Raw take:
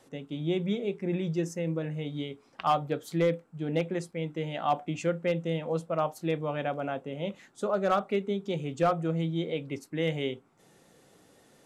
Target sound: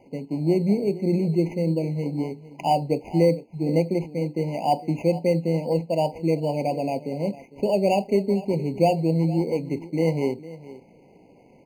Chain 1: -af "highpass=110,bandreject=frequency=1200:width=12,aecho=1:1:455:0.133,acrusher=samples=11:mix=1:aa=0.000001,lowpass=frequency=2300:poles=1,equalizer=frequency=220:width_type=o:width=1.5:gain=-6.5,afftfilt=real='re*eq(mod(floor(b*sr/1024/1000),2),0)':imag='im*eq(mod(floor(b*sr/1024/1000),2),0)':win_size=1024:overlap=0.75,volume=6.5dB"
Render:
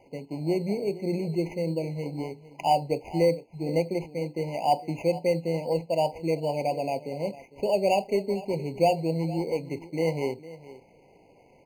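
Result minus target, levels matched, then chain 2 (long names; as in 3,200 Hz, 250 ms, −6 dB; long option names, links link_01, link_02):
250 Hz band −3.0 dB
-af "highpass=110,bandreject=frequency=1200:width=12,aecho=1:1:455:0.133,acrusher=samples=11:mix=1:aa=0.000001,lowpass=frequency=2300:poles=1,equalizer=frequency=220:width_type=o:width=1.5:gain=3,afftfilt=real='re*eq(mod(floor(b*sr/1024/1000),2),0)':imag='im*eq(mod(floor(b*sr/1024/1000),2),0)':win_size=1024:overlap=0.75,volume=6.5dB"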